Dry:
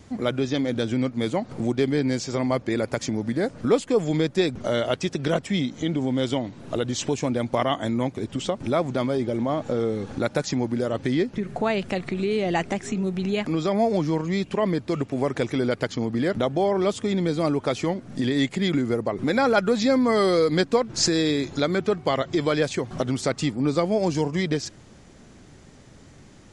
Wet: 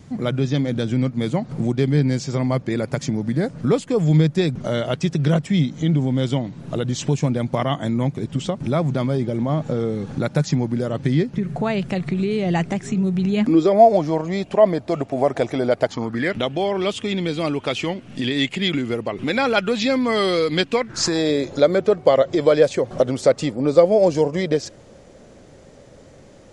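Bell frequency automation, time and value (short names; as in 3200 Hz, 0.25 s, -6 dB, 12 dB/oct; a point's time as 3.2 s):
bell +13.5 dB 0.66 oct
13.31 s 150 Hz
13.82 s 670 Hz
15.84 s 670 Hz
16.38 s 2800 Hz
20.71 s 2800 Hz
21.32 s 540 Hz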